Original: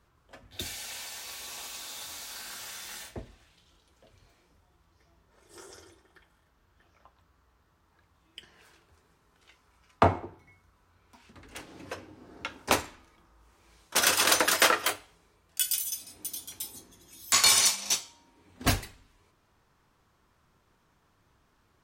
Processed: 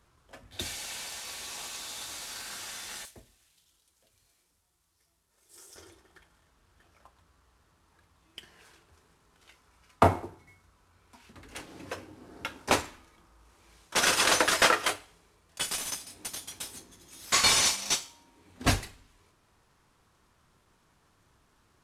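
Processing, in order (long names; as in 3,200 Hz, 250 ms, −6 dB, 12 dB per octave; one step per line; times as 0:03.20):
variable-slope delta modulation 64 kbit/s
0:03.05–0:05.76: first-order pre-emphasis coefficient 0.8
level +1 dB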